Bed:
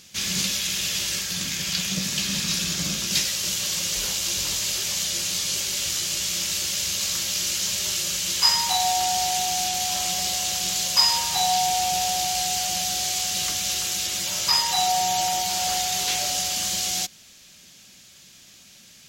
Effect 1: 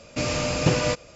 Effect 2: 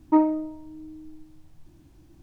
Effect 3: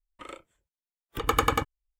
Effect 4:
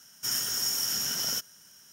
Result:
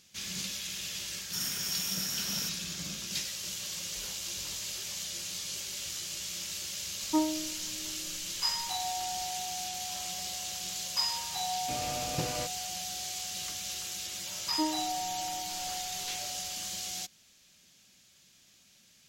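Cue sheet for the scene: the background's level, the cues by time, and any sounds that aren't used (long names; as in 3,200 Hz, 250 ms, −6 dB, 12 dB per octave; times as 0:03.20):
bed −12 dB
0:01.09: mix in 4 −5.5 dB
0:07.01: mix in 2 −9 dB
0:11.52: mix in 1 −14 dB
0:14.46: mix in 2 −13.5 dB
not used: 3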